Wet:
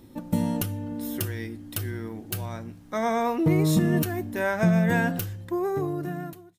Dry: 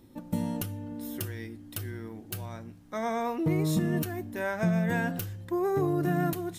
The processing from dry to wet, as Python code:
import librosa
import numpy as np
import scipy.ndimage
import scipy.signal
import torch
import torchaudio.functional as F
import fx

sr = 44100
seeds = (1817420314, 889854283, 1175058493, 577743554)

y = fx.fade_out_tail(x, sr, length_s=1.6)
y = y * librosa.db_to_amplitude(5.5)